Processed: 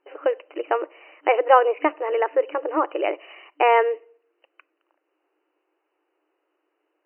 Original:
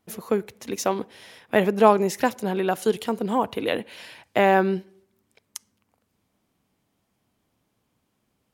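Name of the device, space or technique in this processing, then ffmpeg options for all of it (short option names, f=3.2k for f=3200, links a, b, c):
nightcore: -af "afftfilt=real='re*between(b*sr/4096,240,2500)':imag='im*between(b*sr/4096,240,2500)':win_size=4096:overlap=0.75,asetrate=53361,aresample=44100,equalizer=f=430:w=1.5:g=2.5,volume=1dB"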